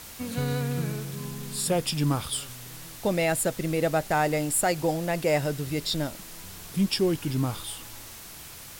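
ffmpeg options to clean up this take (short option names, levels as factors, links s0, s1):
-af "afwtdn=0.0071"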